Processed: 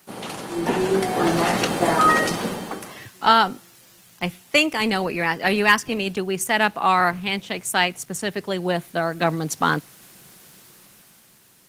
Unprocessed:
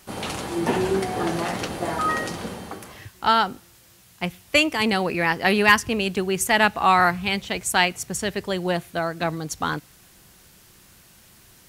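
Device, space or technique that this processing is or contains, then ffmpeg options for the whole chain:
video call: -af "highpass=frequency=130:width=0.5412,highpass=frequency=130:width=1.3066,dynaudnorm=framelen=250:gausssize=9:maxgain=16dB,volume=-1.5dB" -ar 48000 -c:a libopus -b:a 20k

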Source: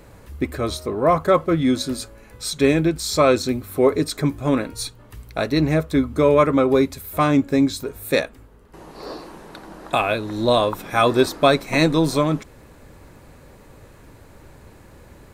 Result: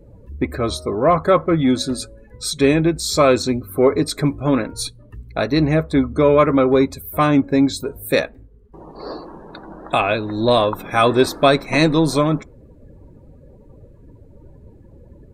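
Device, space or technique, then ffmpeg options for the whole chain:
parallel distortion: -filter_complex "[0:a]asplit=2[link_01][link_02];[link_02]asoftclip=type=hard:threshold=-20dB,volume=-11dB[link_03];[link_01][link_03]amix=inputs=2:normalize=0,afftdn=noise_reduction=24:noise_floor=-40,volume=1dB"

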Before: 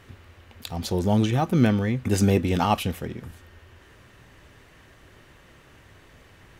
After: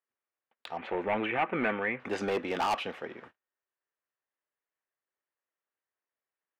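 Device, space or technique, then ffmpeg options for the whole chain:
walkie-talkie: -filter_complex "[0:a]highpass=560,lowpass=2200,asoftclip=type=hard:threshold=-26dB,agate=range=-40dB:threshold=-51dB:ratio=16:detection=peak,asettb=1/sr,asplit=3[link_01][link_02][link_03];[link_01]atrim=end=0.774[link_04];[link_02]atrim=start=0.77:end=2,asetpts=PTS-STARTPTS,afade=type=in:duration=0.004:curve=qsin,afade=type=out:start_time=1.226:duration=0.004:curve=qsin,highshelf=frequency=3500:width_type=q:width=3:gain=-14[link_05];[link_03]atrim=start=1.996[link_06];[link_04][link_05]acrossfade=duration=0.004:curve1=hsin:curve2=qsin[link_07];[link_07][link_06]acrossfade=duration=0.004:curve1=qsin:curve2=hsin,volume=1.5dB"

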